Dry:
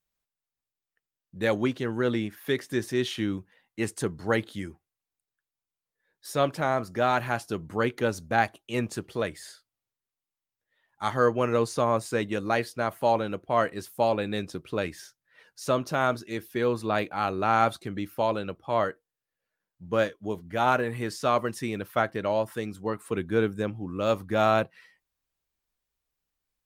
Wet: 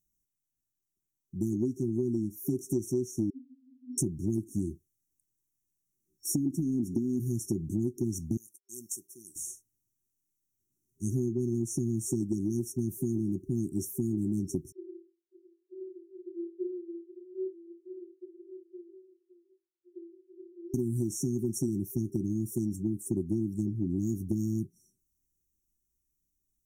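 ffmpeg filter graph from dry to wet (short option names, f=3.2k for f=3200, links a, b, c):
-filter_complex "[0:a]asettb=1/sr,asplit=3[a][b][c];[a]atrim=end=3.304[d];[b]atrim=start=3.3:end=3.98,asetpts=PTS-STARTPTS,afade=t=in:d=0.004:c=qsin,afade=t=out:st=0.676:d=0.004:c=qsin,aeval=exprs='val(0)+0.5*0.0112*sgn(val(0))':c=same,asuperpass=centerf=260:order=20:qfactor=7.8[e];[c]atrim=start=3.976[f];[d][e]acrossfade=d=0.004:c1=hsin:c2=qsin[g];[g][f]acrossfade=d=0.004:c1=qsin:c2=hsin,asettb=1/sr,asplit=3[h][i][j];[h]atrim=end=6.304[k];[i]atrim=start=6.3:end=7.2,asetpts=PTS-STARTPTS,afade=t=in:d=0.004:c=qsin,afade=t=out:st=0.896:d=0.004:c=qsin,equalizer=f=260:t=o:w=0.89:g=12,acompressor=threshold=-22dB:ratio=3:attack=3.2:release=140:knee=1:detection=peak[l];[j]atrim=start=7.196[m];[k][l]acrossfade=d=0.004:c1=hsin:c2=qsin[n];[n][m]acrossfade=d=0.004:c1=qsin:c2=hsin,asettb=1/sr,asplit=3[o][p][q];[o]atrim=end=8.374[r];[p]atrim=start=8.37:end=9.36,asetpts=PTS-STARTPTS,afade=t=in:d=0.004:c=qsin,afade=t=out:st=0.986:d=0.004:c=qsin,agate=range=-33dB:threshold=-46dB:ratio=3:release=100:detection=peak,aderivative,acompressor=threshold=-40dB:ratio=3:attack=3.2:release=140:knee=1:detection=peak[s];[q]atrim=start=9.356[t];[r][s]acrossfade=d=0.004:c1=hsin:c2=qsin[u];[u][t]acrossfade=d=0.004:c1=qsin:c2=hsin,asettb=1/sr,asplit=3[v][w][x];[v]atrim=end=14.724[y];[w]atrim=start=14.72:end=20.74,asetpts=PTS-STARTPTS,afade=t=in:d=0.004:c=qsin,afade=t=out:st=6.016:d=0.004:c=qsin,acompressor=threshold=-36dB:ratio=6:attack=3.2:release=140:knee=1:detection=peak,asuperpass=centerf=360:order=20:qfactor=7.8,aecho=1:1:56|563:0.316|0.211,atrim=end_sample=265482[z];[x]atrim=start=20.736[aa];[y][z]acrossfade=d=0.004:c1=hsin:c2=qsin[ab];[ab][aa]acrossfade=d=0.004:c1=qsin:c2=hsin,dynaudnorm=f=150:g=31:m=4.5dB,afftfilt=real='re*(1-between(b*sr/4096,390,5500))':imag='im*(1-between(b*sr/4096,390,5500))':win_size=4096:overlap=0.75,acompressor=threshold=-31dB:ratio=12,volume=5dB"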